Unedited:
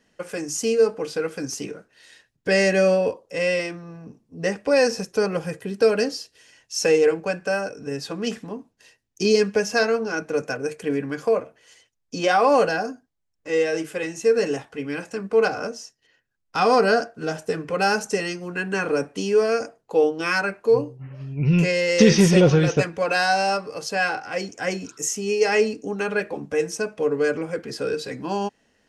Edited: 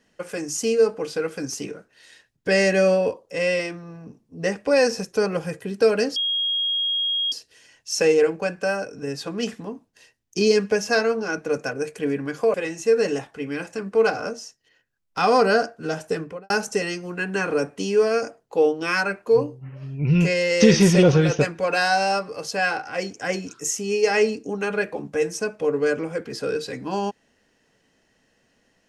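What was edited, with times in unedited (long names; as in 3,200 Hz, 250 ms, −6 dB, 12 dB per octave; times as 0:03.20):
0:06.16: insert tone 3,270 Hz −20.5 dBFS 1.16 s
0:11.38–0:13.92: remove
0:17.54–0:17.88: fade out and dull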